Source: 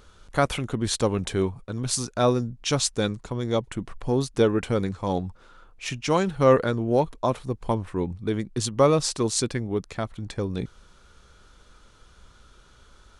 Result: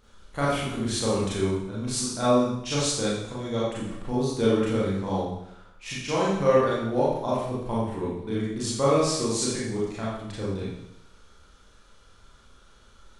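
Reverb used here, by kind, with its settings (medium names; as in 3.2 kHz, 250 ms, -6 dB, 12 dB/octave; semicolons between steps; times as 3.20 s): Schroeder reverb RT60 0.8 s, combs from 28 ms, DRR -8 dB; trim -9.5 dB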